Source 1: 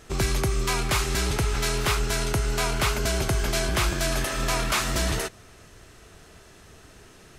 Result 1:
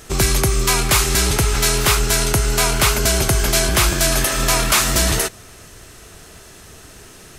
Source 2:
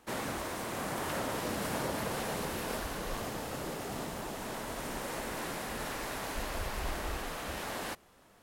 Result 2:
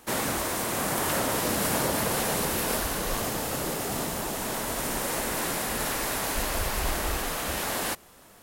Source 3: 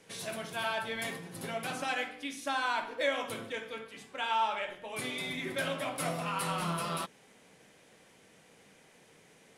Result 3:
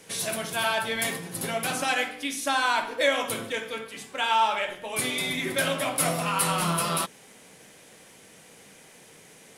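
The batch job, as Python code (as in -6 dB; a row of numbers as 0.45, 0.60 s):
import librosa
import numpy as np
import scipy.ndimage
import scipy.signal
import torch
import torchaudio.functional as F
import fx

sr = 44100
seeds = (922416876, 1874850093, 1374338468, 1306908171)

y = fx.high_shelf(x, sr, hz=6500.0, db=10.0)
y = y * librosa.db_to_amplitude(7.0)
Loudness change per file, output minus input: +9.5, +9.5, +8.0 LU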